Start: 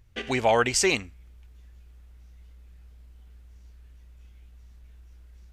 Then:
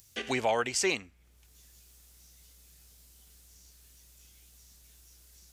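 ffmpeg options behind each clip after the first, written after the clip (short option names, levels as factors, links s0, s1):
-filter_complex "[0:a]highpass=f=170:p=1,acrossover=split=530|4900[s0][s1][s2];[s2]acompressor=mode=upward:threshold=0.0112:ratio=2.5[s3];[s0][s1][s3]amix=inputs=3:normalize=0,alimiter=limit=0.178:level=0:latency=1:release=489,volume=0.75"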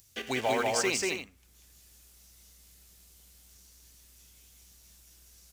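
-filter_complex "[0:a]asplit=2[s0][s1];[s1]acrusher=bits=2:mode=log:mix=0:aa=0.000001,volume=0.473[s2];[s0][s2]amix=inputs=2:normalize=0,aecho=1:1:189.5|271.1:0.794|0.355,volume=0.562"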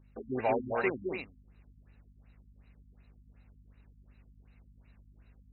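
-af "aeval=exprs='val(0)+0.00112*(sin(2*PI*50*n/s)+sin(2*PI*2*50*n/s)/2+sin(2*PI*3*50*n/s)/3+sin(2*PI*4*50*n/s)/4+sin(2*PI*5*50*n/s)/5)':c=same,asuperstop=centerf=3300:order=12:qfactor=3.2,afftfilt=real='re*lt(b*sr/1024,270*pow(4100/270,0.5+0.5*sin(2*PI*2.7*pts/sr)))':imag='im*lt(b*sr/1024,270*pow(4100/270,0.5+0.5*sin(2*PI*2.7*pts/sr)))':win_size=1024:overlap=0.75"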